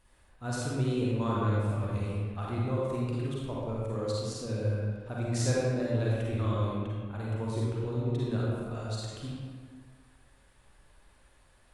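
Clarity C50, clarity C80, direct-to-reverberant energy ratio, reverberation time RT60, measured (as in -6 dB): -4.0 dB, -1.5 dB, -6.0 dB, 1.7 s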